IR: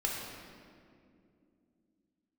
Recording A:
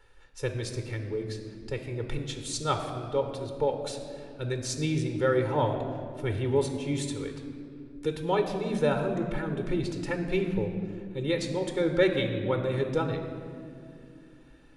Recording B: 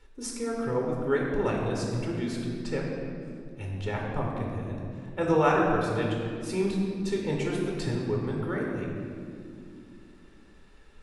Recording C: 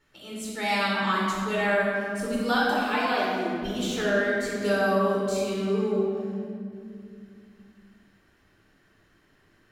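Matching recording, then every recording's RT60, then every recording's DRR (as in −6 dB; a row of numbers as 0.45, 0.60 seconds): B; 2.6, 2.5, 2.5 seconds; 5.5, −1.5, −6.5 decibels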